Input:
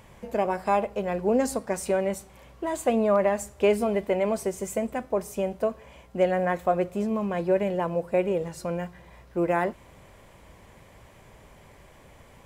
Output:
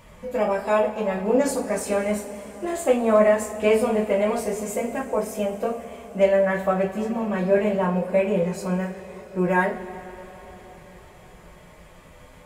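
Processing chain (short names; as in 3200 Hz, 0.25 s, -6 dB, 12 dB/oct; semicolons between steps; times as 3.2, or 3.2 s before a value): formant-preserving pitch shift +1 st; two-slope reverb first 0.26 s, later 4.5 s, from -22 dB, DRR -4.5 dB; gain -1.5 dB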